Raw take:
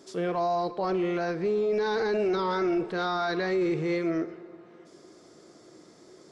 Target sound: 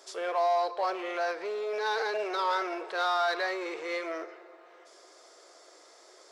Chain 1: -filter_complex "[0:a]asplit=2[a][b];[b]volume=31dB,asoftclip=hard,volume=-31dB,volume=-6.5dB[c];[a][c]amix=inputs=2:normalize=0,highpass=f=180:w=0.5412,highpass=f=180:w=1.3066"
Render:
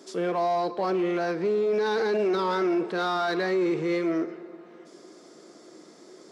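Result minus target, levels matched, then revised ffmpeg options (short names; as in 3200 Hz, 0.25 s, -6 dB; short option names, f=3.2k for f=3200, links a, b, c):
250 Hz band +11.0 dB
-filter_complex "[0:a]asplit=2[a][b];[b]volume=31dB,asoftclip=hard,volume=-31dB,volume=-6.5dB[c];[a][c]amix=inputs=2:normalize=0,highpass=f=540:w=0.5412,highpass=f=540:w=1.3066"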